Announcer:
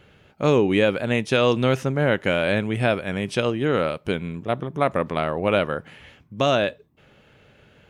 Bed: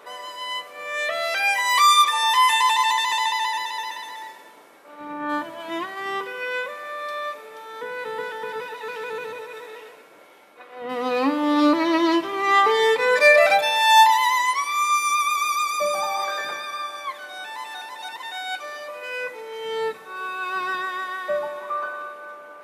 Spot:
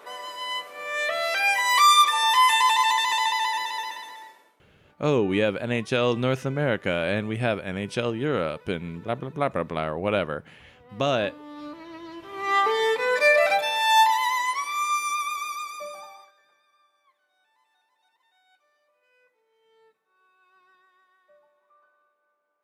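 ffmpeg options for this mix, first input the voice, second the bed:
-filter_complex "[0:a]adelay=4600,volume=-4dB[a];[1:a]volume=16dB,afade=t=out:st=3.76:d=0.84:silence=0.0944061,afade=t=in:st=12.16:d=0.4:silence=0.141254,afade=t=out:st=14.91:d=1.41:silence=0.0316228[b];[a][b]amix=inputs=2:normalize=0"

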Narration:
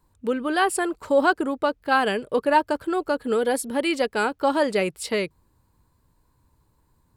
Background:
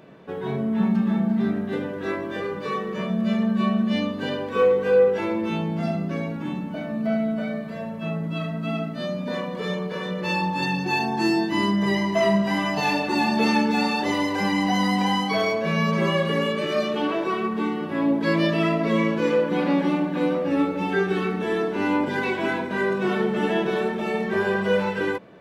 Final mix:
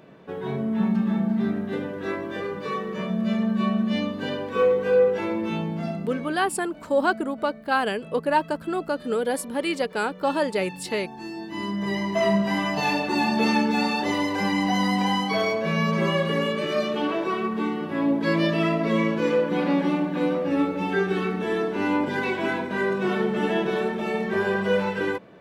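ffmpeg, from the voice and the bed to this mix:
-filter_complex "[0:a]adelay=5800,volume=-2.5dB[a];[1:a]volume=12dB,afade=t=out:st=5.59:d=0.92:silence=0.223872,afade=t=in:st=11.33:d=1:silence=0.211349[b];[a][b]amix=inputs=2:normalize=0"

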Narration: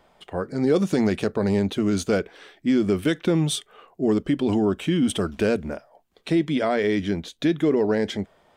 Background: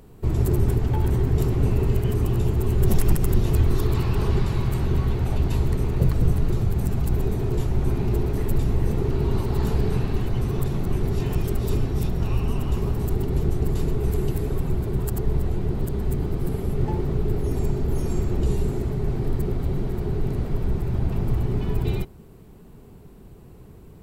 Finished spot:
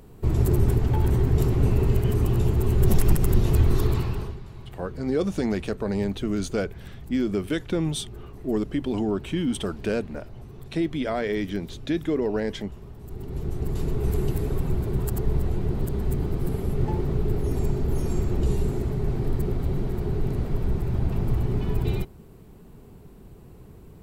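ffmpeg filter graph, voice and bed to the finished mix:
-filter_complex "[0:a]adelay=4450,volume=-4.5dB[a];[1:a]volume=17dB,afade=t=out:st=3.85:d=0.52:silence=0.125893,afade=t=in:st=13:d=1.12:silence=0.141254[b];[a][b]amix=inputs=2:normalize=0"

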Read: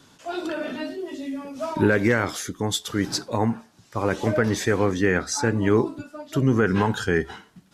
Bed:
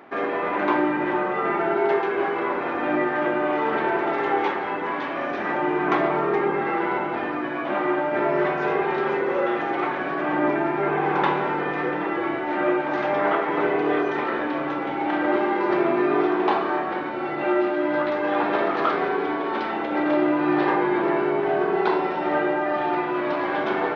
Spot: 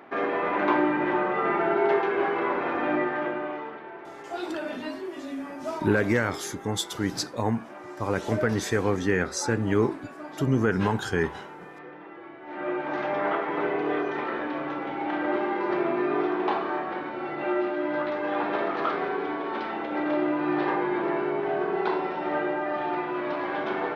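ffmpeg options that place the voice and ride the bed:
-filter_complex "[0:a]adelay=4050,volume=-3.5dB[a];[1:a]volume=12dB,afade=t=out:st=2.79:d=1:silence=0.141254,afade=t=in:st=12.39:d=0.51:silence=0.211349[b];[a][b]amix=inputs=2:normalize=0"

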